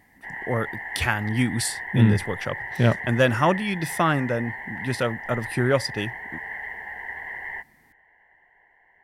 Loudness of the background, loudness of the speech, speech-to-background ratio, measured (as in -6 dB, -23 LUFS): -33.5 LUFS, -24.5 LUFS, 9.0 dB